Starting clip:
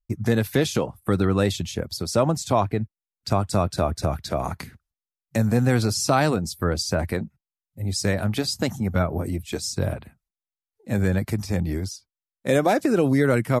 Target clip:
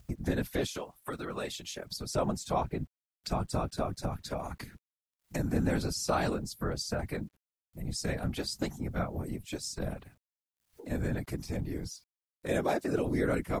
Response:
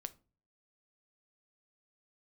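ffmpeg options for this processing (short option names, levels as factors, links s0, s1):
-filter_complex "[0:a]asettb=1/sr,asplit=3[s0][s1][s2];[s0]atrim=end=0.664[s3];[s1]atrim=start=0.66:end=1.87,asetpts=PTS-STARTPTS,afade=t=in:d=0.004:c=qsin,afade=t=out:st=1.206:d=0.004:c=qsin,highpass=f=680:p=1[s4];[s2]atrim=start=1.866[s5];[s3][s4]acrossfade=d=0.004:c1=hsin:c2=qsin[s6];[s6][s5]acrossfade=d=0.004:c1=qsin:c2=hsin,acompressor=mode=upward:threshold=0.0708:ratio=2.5,afftfilt=real='hypot(re,im)*cos(2*PI*random(0))':imag='hypot(re,im)*sin(2*PI*random(1))':win_size=512:overlap=0.75,acrusher=bits=10:mix=0:aa=0.000001,volume=0.631"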